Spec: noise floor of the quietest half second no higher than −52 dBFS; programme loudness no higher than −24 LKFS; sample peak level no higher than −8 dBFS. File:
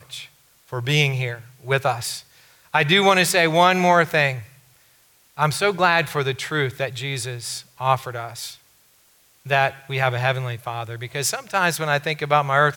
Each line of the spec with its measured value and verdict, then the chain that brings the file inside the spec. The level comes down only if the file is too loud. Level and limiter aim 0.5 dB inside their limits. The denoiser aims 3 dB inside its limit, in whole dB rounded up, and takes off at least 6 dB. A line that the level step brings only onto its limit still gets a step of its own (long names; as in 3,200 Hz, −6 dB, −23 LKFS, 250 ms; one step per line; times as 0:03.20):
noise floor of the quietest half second −57 dBFS: in spec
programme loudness −20.5 LKFS: out of spec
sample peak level −4.5 dBFS: out of spec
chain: level −4 dB